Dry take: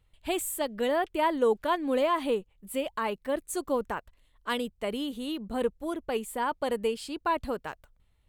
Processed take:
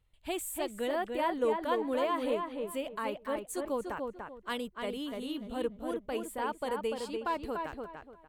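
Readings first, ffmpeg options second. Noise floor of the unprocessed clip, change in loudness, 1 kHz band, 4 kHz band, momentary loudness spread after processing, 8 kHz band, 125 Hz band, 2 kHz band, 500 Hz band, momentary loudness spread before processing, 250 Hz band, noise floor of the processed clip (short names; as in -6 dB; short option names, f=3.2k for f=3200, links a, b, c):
-67 dBFS, -4.5 dB, -4.0 dB, -5.0 dB, 8 LU, -5.5 dB, -4.0 dB, -4.5 dB, -4.0 dB, 9 LU, -4.0 dB, -60 dBFS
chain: -filter_complex "[0:a]asplit=2[a][b];[b]adelay=293,lowpass=f=2.5k:p=1,volume=-4dB,asplit=2[c][d];[d]adelay=293,lowpass=f=2.5k:p=1,volume=0.27,asplit=2[e][f];[f]adelay=293,lowpass=f=2.5k:p=1,volume=0.27,asplit=2[g][h];[h]adelay=293,lowpass=f=2.5k:p=1,volume=0.27[i];[a][c][e][g][i]amix=inputs=5:normalize=0,volume=-5.5dB"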